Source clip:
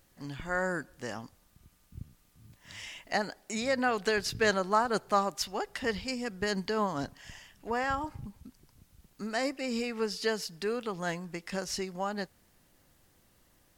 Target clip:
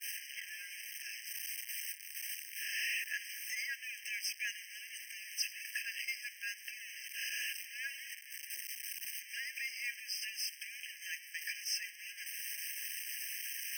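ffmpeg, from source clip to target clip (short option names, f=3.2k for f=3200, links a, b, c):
-filter_complex "[0:a]aeval=exprs='val(0)+0.5*0.0335*sgn(val(0))':c=same,asplit=2[a][b];[b]acompressor=threshold=-35dB:ratio=6,volume=-1dB[c];[a][c]amix=inputs=2:normalize=0,afreqshift=-240,equalizer=f=100:t=o:w=0.67:g=-9,equalizer=f=250:t=o:w=0.67:g=-5,equalizer=f=1.6k:t=o:w=0.67:g=-5,equalizer=f=4k:t=o:w=0.67:g=-4,agate=range=-33dB:threshold=-29dB:ratio=3:detection=peak,equalizer=f=1.8k:t=o:w=1.9:g=4,areverse,acompressor=mode=upward:threshold=-26dB:ratio=2.5,areverse,afftfilt=real='re*eq(mod(floor(b*sr/1024/1600),2),1)':imag='im*eq(mod(floor(b*sr/1024/1600),2),1)':win_size=1024:overlap=0.75,volume=-6dB"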